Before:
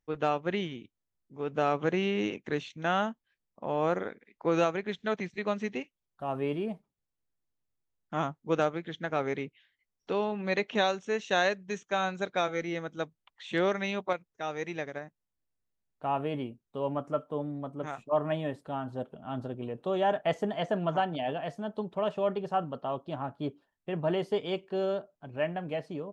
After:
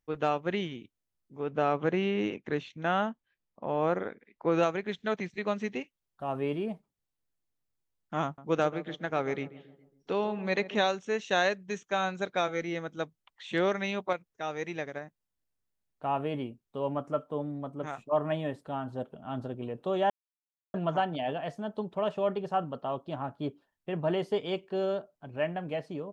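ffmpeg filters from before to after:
ffmpeg -i in.wav -filter_complex "[0:a]asettb=1/sr,asplit=3[link_01][link_02][link_03];[link_01]atrim=end=1.394[link_04];[link_02]atrim=start=1.39:end=4.63,asetpts=PTS-STARTPTS,afade=type=in:duration=0.004:curve=qsin,afade=type=out:start_time=3.236:duration=0.004:curve=qsin,aemphasis=mode=reproduction:type=50fm[link_05];[link_03]atrim=start=4.626[link_06];[link_04][link_05]acrossfade=duration=0.004:curve1=hsin:curve2=qsin[link_07];[link_07][link_06]acrossfade=duration=0.004:curve1=qsin:curve2=hsin,asettb=1/sr,asplit=3[link_08][link_09][link_10];[link_08]atrim=end=8.244[link_11];[link_09]atrim=start=8.24:end=10.87,asetpts=PTS-STARTPTS,afade=type=in:duration=0.004:curve=qsin,afade=type=out:start_time=2.626:duration=0.004:curve=qsin,asplit=2[link_12][link_13];[link_13]adelay=137,lowpass=frequency=1000:poles=1,volume=-14dB,asplit=2[link_14][link_15];[link_15]adelay=137,lowpass=frequency=1000:poles=1,volume=0.52,asplit=2[link_16][link_17];[link_17]adelay=137,lowpass=frequency=1000:poles=1,volume=0.52,asplit=2[link_18][link_19];[link_19]adelay=137,lowpass=frequency=1000:poles=1,volume=0.52,asplit=2[link_20][link_21];[link_21]adelay=137,lowpass=frequency=1000:poles=1,volume=0.52[link_22];[link_12][link_14][link_16][link_18][link_20][link_22]amix=inputs=6:normalize=0,atrim=end_sample=115983[link_23];[link_10]atrim=start=10.866[link_24];[link_11][link_23]acrossfade=duration=0.004:curve1=hsin:curve2=qsin[link_25];[link_25][link_24]acrossfade=duration=0.004:curve1=qsin:curve2=hsin,asplit=3[link_26][link_27][link_28];[link_26]atrim=end=20.1,asetpts=PTS-STARTPTS,afade=type=out:start_time=20.096:duration=0.004:curve=hsin[link_29];[link_27]atrim=start=20.1:end=20.74,asetpts=PTS-STARTPTS,volume=0[link_30];[link_28]atrim=start=20.74,asetpts=PTS-STARTPTS,afade=type=in:duration=0.004:curve=hsin[link_31];[link_29][link_30][link_31]concat=n=3:v=0:a=1" out.wav

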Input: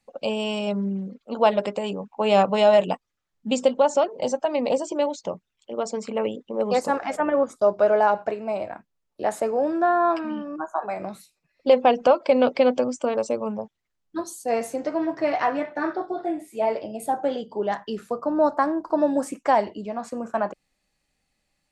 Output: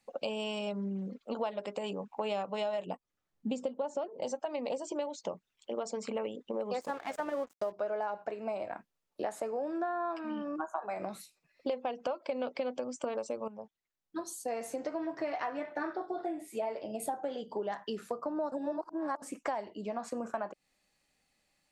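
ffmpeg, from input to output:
ffmpeg -i in.wav -filter_complex "[0:a]asettb=1/sr,asplit=3[link_01][link_02][link_03];[link_01]atrim=end=2.864[link_04];[link_02]atrim=start=2.86:end=4.23,asetpts=PTS-STARTPTS,afade=type=in:duration=0.004:curve=qsin,afade=type=out:start_time=1.366:duration=0.004:curve=qsin,tiltshelf=frequency=760:gain=5[link_05];[link_03]atrim=start=4.226[link_06];[link_04][link_05]acrossfade=duration=0.004:curve1=hsin:curve2=qsin[link_07];[link_07][link_06]acrossfade=duration=0.004:curve1=qsin:curve2=hsin,asettb=1/sr,asplit=3[link_08][link_09][link_10];[link_08]atrim=end=6.814[link_11];[link_09]atrim=start=6.81:end=7.72,asetpts=PTS-STARTPTS,afade=type=in:duration=0.004:curve=qsin,afade=type=out:start_time=0.906:duration=0.004:curve=qsin,aeval=exprs='sgn(val(0))*max(abs(val(0))-0.0106,0)':channel_layout=same[link_12];[link_10]atrim=start=7.716[link_13];[link_11][link_12]acrossfade=duration=0.004:curve1=hsin:curve2=qsin[link_14];[link_14][link_13]acrossfade=duration=0.004:curve1=qsin:curve2=hsin,asplit=4[link_15][link_16][link_17][link_18];[link_15]atrim=end=13.48,asetpts=PTS-STARTPTS,afade=type=out:start_time=13.476:duration=0.004:curve=hsin:silence=0.237137[link_19];[link_16]atrim=start=13.48:end=18.522,asetpts=PTS-STARTPTS,afade=type=in:duration=1.73:silence=0.237137[link_20];[link_17]atrim=start=18.518:end=19.222,asetpts=PTS-STARTPTS,areverse[link_21];[link_18]atrim=start=19.218[link_22];[link_19][link_20]concat=n=2:v=0:a=1[link_23];[link_23][link_21]acrossfade=duration=0.004:curve1=hsin:curve2=hsin[link_24];[link_24][link_22]acrossfade=duration=0.004:curve1=hsin:curve2=hsin,lowshelf=frequency=140:gain=-9.5,acompressor=threshold=-33dB:ratio=6" out.wav

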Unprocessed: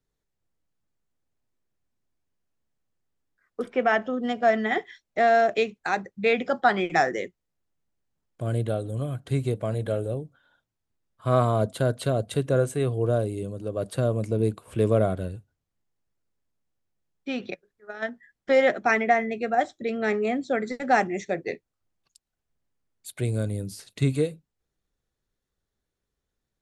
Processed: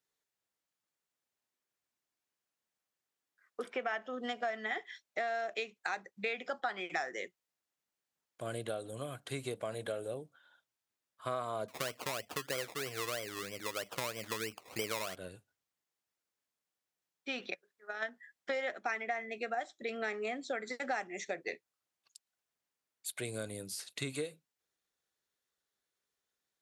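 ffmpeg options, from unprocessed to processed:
ffmpeg -i in.wav -filter_complex "[0:a]asettb=1/sr,asplit=3[link_01][link_02][link_03];[link_01]atrim=end=11.684[link_04];[link_02]atrim=start=11.68:end=15.16,asetpts=PTS-STARTPTS,afade=type=in:duration=0.004:curve=qsin,afade=type=out:start_time=3.476:duration=0.004:curve=qsin,acrusher=samples=23:mix=1:aa=0.000001:lfo=1:lforange=13.8:lforate=3.1[link_05];[link_03]atrim=start=15.156[link_06];[link_04][link_05]acrossfade=duration=0.004:curve1=hsin:curve2=qsin[link_07];[link_07][link_06]acrossfade=duration=0.004:curve1=qsin:curve2=hsin,highpass=frequency=1100:poles=1,acompressor=threshold=-35dB:ratio=5,volume=1dB" out.wav

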